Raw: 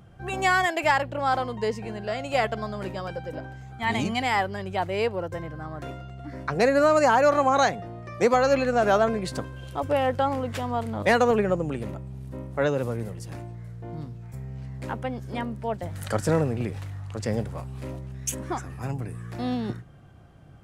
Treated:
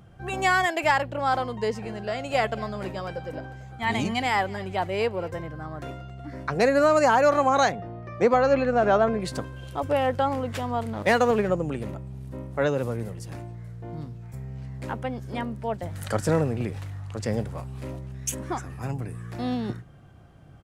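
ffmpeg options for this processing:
ffmpeg -i in.wav -filter_complex "[0:a]asplit=3[link_01][link_02][link_03];[link_01]afade=type=out:start_time=1.74:duration=0.02[link_04];[link_02]aecho=1:1:227|454|681|908:0.0841|0.0471|0.0264|0.0148,afade=type=in:start_time=1.74:duration=0.02,afade=type=out:start_time=5.41:duration=0.02[link_05];[link_03]afade=type=in:start_time=5.41:duration=0.02[link_06];[link_04][link_05][link_06]amix=inputs=3:normalize=0,asettb=1/sr,asplit=3[link_07][link_08][link_09];[link_07]atrim=end=7.724[link_10];[link_08]atrim=start=7.72:end=9.2,asetpts=PTS-STARTPTS,afade=type=in:duration=0.004:curve=qsin,afade=type=out:start_time=1.476:duration=0.004:curve=qsin,aemphasis=mode=reproduction:type=75fm[link_11];[link_09]atrim=start=9.196[link_12];[link_10][link_11]acrossfade=duration=0.004:curve1=hsin:curve2=qsin[link_13];[link_13][link_12]acrossfade=duration=0.004:curve1=qsin:curve2=hsin,asettb=1/sr,asplit=3[link_14][link_15][link_16];[link_14]atrim=end=10.934[link_17];[link_15]atrim=start=10.93:end=11.49,asetpts=PTS-STARTPTS,afade=type=in:duration=0.004:curve=qsin,afade=type=out:start_time=0.556:duration=0.004:curve=qsin,aeval=exprs='sgn(val(0))*max(abs(val(0))-0.00841,0)':channel_layout=same[link_18];[link_16]atrim=start=11.486[link_19];[link_17][link_18]acrossfade=duration=0.004:curve1=hsin:curve2=qsin[link_20];[link_20][link_19]acrossfade=duration=0.004:curve1=qsin:curve2=hsin" out.wav

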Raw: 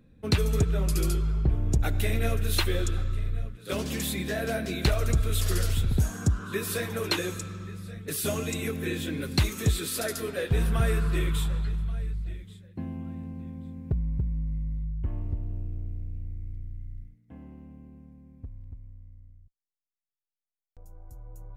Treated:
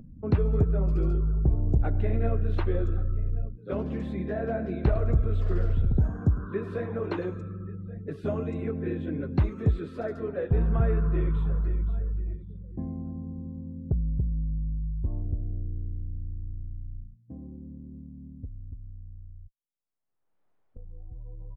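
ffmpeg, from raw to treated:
ffmpeg -i in.wav -filter_complex "[0:a]asettb=1/sr,asplit=3[link_01][link_02][link_03];[link_01]atrim=end=3.884[link_04];[link_02]atrim=start=3.88:end=7.26,asetpts=PTS-STARTPTS,afade=type=in:duration=0.004:curve=qsin,afade=type=out:start_time=3.376:duration=0.004:curve=qsin,aecho=1:1:105:0.2,atrim=end_sample=149058[link_05];[link_03]atrim=start=7.256[link_06];[link_04][link_05]acrossfade=duration=0.004:curve1=hsin:curve2=qsin[link_07];[link_07][link_06]acrossfade=duration=0.004:curve1=qsin:curve2=hsin,asplit=2[link_08][link_09];[link_09]afade=type=in:start_time=10.94:duration=0.01,afade=type=out:start_time=11.83:duration=0.01,aecho=0:1:520|1040|1560|2080:0.316228|0.11068|0.0387379|0.0135583[link_10];[link_08][link_10]amix=inputs=2:normalize=0,afftdn=noise_reduction=21:noise_floor=-48,lowpass=1000,acompressor=mode=upward:threshold=-36dB:ratio=2.5,volume=1dB" out.wav

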